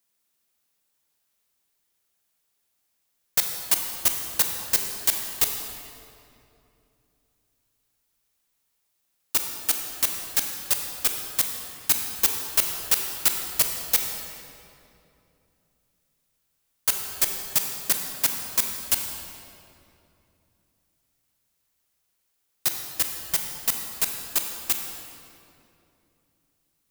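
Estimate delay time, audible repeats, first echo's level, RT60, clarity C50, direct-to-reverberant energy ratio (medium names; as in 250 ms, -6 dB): no echo, no echo, no echo, 2.8 s, 4.0 dB, 3.0 dB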